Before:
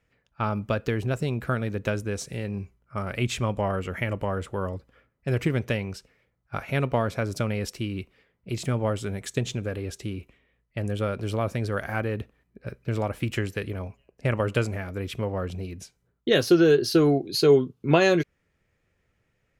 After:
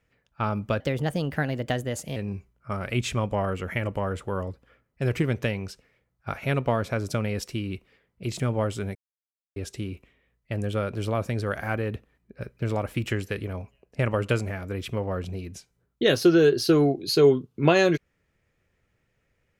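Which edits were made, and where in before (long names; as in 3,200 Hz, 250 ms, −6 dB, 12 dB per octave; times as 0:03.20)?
0:00.80–0:02.42: play speed 119%
0:09.21–0:09.82: silence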